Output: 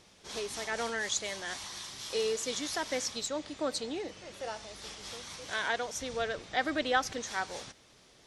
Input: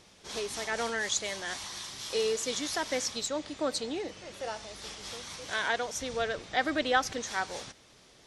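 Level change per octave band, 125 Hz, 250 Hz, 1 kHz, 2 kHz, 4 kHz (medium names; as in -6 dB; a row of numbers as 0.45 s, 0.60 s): -2.0 dB, -2.0 dB, -2.0 dB, -2.0 dB, -2.0 dB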